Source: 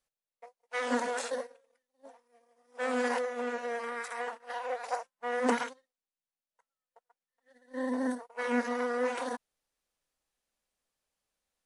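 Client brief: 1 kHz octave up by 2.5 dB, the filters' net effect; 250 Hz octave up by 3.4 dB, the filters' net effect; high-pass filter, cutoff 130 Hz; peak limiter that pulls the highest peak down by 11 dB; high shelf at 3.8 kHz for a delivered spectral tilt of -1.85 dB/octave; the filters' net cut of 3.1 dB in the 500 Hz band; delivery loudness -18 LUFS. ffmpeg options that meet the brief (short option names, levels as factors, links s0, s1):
-af "highpass=130,equalizer=f=250:t=o:g=4.5,equalizer=f=500:t=o:g=-5,equalizer=f=1000:t=o:g=4,highshelf=f=3800:g=8.5,volume=6.31,alimiter=limit=0.501:level=0:latency=1"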